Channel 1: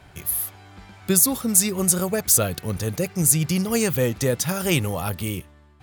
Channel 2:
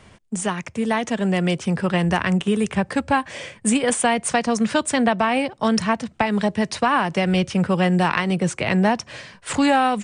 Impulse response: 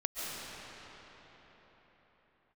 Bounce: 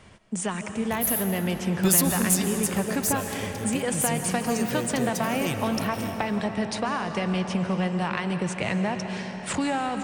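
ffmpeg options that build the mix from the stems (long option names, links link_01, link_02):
-filter_complex "[0:a]adelay=750,volume=-3.5dB,afade=type=out:start_time=2:duration=0.57:silence=0.375837,asplit=2[link_01][link_02];[link_02]volume=-7.5dB[link_03];[1:a]acompressor=threshold=-21dB:ratio=6,volume=-5dB,asplit=2[link_04][link_05];[link_05]volume=-8dB[link_06];[2:a]atrim=start_sample=2205[link_07];[link_03][link_06]amix=inputs=2:normalize=0[link_08];[link_08][link_07]afir=irnorm=-1:irlink=0[link_09];[link_01][link_04][link_09]amix=inputs=3:normalize=0,asoftclip=type=tanh:threshold=-11.5dB"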